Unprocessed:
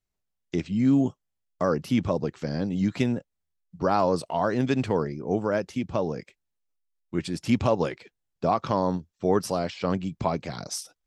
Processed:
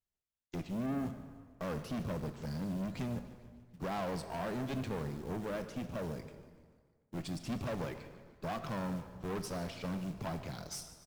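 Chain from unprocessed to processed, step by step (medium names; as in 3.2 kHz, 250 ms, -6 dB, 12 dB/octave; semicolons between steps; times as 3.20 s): dynamic bell 160 Hz, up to +6 dB, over -39 dBFS, Q 1.3; short-mantissa float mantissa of 2-bit; valve stage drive 27 dB, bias 0.5; on a send: frequency-shifting echo 147 ms, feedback 57%, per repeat -58 Hz, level -16.5 dB; on the sum: plate-style reverb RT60 1.7 s, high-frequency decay 0.75×, DRR 9 dB; trim -7.5 dB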